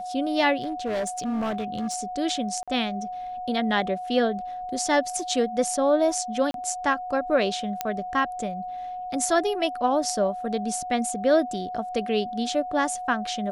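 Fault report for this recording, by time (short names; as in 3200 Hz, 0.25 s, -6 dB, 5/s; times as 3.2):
tone 730 Hz -31 dBFS
0.61–1.95 clipped -24 dBFS
2.63–2.68 gap 46 ms
6.51–6.54 gap 32 ms
7.81 pop -10 dBFS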